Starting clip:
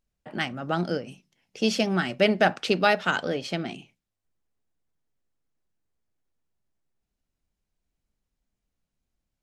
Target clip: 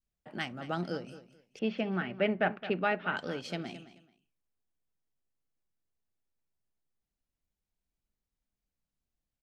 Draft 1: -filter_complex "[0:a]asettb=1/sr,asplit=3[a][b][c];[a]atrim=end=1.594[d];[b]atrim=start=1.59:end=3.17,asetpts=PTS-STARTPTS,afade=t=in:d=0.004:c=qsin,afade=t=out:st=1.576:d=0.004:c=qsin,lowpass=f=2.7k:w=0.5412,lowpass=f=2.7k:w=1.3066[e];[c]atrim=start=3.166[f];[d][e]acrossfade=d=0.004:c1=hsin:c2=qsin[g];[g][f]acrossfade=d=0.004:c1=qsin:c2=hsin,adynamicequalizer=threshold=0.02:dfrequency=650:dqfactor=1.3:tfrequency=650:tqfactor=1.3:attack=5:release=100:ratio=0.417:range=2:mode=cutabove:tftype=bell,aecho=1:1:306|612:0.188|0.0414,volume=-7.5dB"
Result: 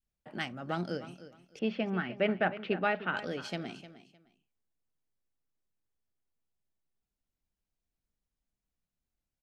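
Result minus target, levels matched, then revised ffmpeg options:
echo 90 ms late
-filter_complex "[0:a]asettb=1/sr,asplit=3[a][b][c];[a]atrim=end=1.594[d];[b]atrim=start=1.59:end=3.17,asetpts=PTS-STARTPTS,afade=t=in:d=0.004:c=qsin,afade=t=out:st=1.576:d=0.004:c=qsin,lowpass=f=2.7k:w=0.5412,lowpass=f=2.7k:w=1.3066[e];[c]atrim=start=3.166[f];[d][e]acrossfade=d=0.004:c1=hsin:c2=qsin[g];[g][f]acrossfade=d=0.004:c1=qsin:c2=hsin,adynamicequalizer=threshold=0.02:dfrequency=650:dqfactor=1.3:tfrequency=650:tqfactor=1.3:attack=5:release=100:ratio=0.417:range=2:mode=cutabove:tftype=bell,aecho=1:1:216|432:0.188|0.0414,volume=-7.5dB"

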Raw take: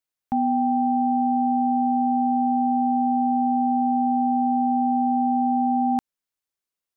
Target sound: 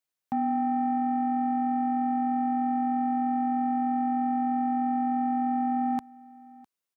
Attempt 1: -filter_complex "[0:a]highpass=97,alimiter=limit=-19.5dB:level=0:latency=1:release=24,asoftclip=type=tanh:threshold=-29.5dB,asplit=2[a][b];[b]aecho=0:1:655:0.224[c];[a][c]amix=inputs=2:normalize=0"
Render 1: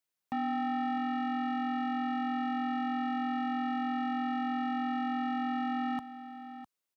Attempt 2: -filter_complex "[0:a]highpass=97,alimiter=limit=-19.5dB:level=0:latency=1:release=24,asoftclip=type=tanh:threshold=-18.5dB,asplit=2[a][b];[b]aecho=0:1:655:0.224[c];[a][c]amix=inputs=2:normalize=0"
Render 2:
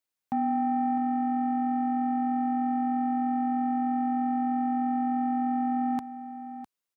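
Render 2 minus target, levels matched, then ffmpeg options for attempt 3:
echo-to-direct +10 dB
-filter_complex "[0:a]highpass=97,alimiter=limit=-19.5dB:level=0:latency=1:release=24,asoftclip=type=tanh:threshold=-18.5dB,asplit=2[a][b];[b]aecho=0:1:655:0.0708[c];[a][c]amix=inputs=2:normalize=0"

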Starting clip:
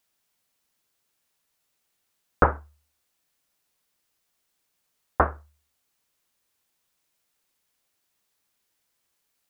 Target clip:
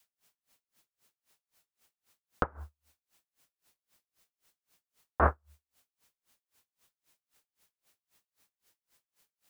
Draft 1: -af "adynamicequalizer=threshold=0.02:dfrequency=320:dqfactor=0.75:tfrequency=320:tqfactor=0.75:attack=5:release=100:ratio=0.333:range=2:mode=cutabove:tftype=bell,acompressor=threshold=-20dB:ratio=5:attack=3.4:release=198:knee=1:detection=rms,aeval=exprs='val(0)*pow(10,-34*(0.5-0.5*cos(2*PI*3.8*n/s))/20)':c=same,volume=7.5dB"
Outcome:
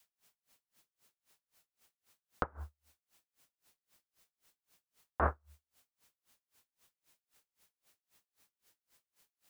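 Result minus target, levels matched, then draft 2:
compressor: peak gain reduction +6 dB
-af "adynamicequalizer=threshold=0.02:dfrequency=320:dqfactor=0.75:tfrequency=320:tqfactor=0.75:attack=5:release=100:ratio=0.333:range=2:mode=cutabove:tftype=bell,acompressor=threshold=-12.5dB:ratio=5:attack=3.4:release=198:knee=1:detection=rms,aeval=exprs='val(0)*pow(10,-34*(0.5-0.5*cos(2*PI*3.8*n/s))/20)':c=same,volume=7.5dB"

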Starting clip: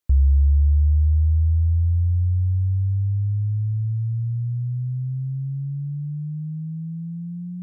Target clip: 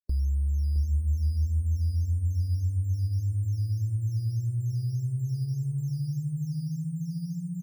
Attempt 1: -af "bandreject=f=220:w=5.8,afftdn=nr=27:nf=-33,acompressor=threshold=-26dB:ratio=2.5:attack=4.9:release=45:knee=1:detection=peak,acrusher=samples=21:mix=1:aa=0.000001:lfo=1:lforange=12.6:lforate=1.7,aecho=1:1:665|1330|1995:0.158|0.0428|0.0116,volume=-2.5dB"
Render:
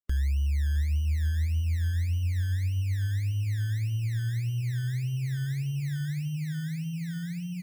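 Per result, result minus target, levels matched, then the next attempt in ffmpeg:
decimation with a swept rate: distortion +10 dB; echo-to-direct -8.5 dB
-af "bandreject=f=220:w=5.8,afftdn=nr=27:nf=-33,acompressor=threshold=-26dB:ratio=2.5:attack=4.9:release=45:knee=1:detection=peak,acrusher=samples=7:mix=1:aa=0.000001:lfo=1:lforange=4.2:lforate=1.7,aecho=1:1:665|1330|1995:0.158|0.0428|0.0116,volume=-2.5dB"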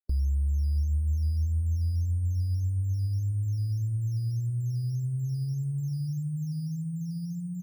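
echo-to-direct -8.5 dB
-af "bandreject=f=220:w=5.8,afftdn=nr=27:nf=-33,acompressor=threshold=-26dB:ratio=2.5:attack=4.9:release=45:knee=1:detection=peak,acrusher=samples=7:mix=1:aa=0.000001:lfo=1:lforange=4.2:lforate=1.7,aecho=1:1:665|1330|1995:0.422|0.114|0.0307,volume=-2.5dB"

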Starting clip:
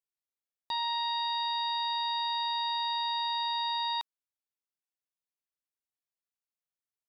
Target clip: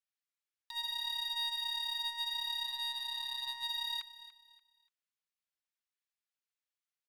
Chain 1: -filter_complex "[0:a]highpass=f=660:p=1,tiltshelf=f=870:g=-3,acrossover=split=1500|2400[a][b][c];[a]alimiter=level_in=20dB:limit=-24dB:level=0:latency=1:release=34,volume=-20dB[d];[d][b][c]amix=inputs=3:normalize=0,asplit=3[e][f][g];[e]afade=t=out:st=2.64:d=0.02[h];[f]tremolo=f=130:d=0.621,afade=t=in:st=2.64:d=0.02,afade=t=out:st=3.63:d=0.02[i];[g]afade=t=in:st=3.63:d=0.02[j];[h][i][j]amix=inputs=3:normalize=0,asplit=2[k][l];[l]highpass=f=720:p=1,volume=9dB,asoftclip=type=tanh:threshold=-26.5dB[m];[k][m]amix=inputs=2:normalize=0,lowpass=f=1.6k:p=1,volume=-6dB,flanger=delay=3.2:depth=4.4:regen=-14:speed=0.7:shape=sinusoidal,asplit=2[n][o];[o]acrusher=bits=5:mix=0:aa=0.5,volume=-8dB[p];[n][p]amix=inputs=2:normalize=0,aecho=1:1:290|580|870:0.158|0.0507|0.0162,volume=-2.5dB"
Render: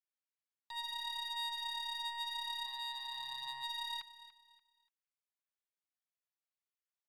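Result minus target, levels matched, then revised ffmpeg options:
1000 Hz band +6.5 dB
-filter_complex "[0:a]highpass=f=660:p=1,tiltshelf=f=870:g=-10.5,acrossover=split=1500|2400[a][b][c];[a]alimiter=level_in=20dB:limit=-24dB:level=0:latency=1:release=34,volume=-20dB[d];[d][b][c]amix=inputs=3:normalize=0,asplit=3[e][f][g];[e]afade=t=out:st=2.64:d=0.02[h];[f]tremolo=f=130:d=0.621,afade=t=in:st=2.64:d=0.02,afade=t=out:st=3.63:d=0.02[i];[g]afade=t=in:st=3.63:d=0.02[j];[h][i][j]amix=inputs=3:normalize=0,asplit=2[k][l];[l]highpass=f=720:p=1,volume=9dB,asoftclip=type=tanh:threshold=-26.5dB[m];[k][m]amix=inputs=2:normalize=0,lowpass=f=1.6k:p=1,volume=-6dB,flanger=delay=3.2:depth=4.4:regen=-14:speed=0.7:shape=sinusoidal,asplit=2[n][o];[o]acrusher=bits=5:mix=0:aa=0.5,volume=-8dB[p];[n][p]amix=inputs=2:normalize=0,aecho=1:1:290|580|870:0.158|0.0507|0.0162,volume=-2.5dB"

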